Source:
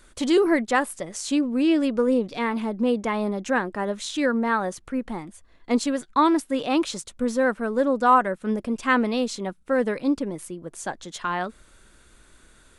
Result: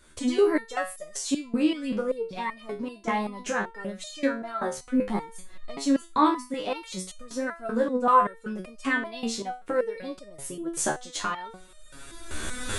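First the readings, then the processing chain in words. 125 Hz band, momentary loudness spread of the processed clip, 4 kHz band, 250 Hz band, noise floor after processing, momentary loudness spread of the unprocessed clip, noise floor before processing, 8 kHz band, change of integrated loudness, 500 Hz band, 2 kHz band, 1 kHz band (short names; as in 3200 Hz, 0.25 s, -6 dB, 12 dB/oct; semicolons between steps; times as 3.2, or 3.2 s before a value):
-4.0 dB, 14 LU, -3.0 dB, -5.5 dB, -50 dBFS, 12 LU, -55 dBFS, +1.5 dB, -4.5 dB, -4.0 dB, -4.5 dB, -3.0 dB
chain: recorder AGC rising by 20 dB/s; stepped resonator 5.2 Hz 76–610 Hz; gain +6 dB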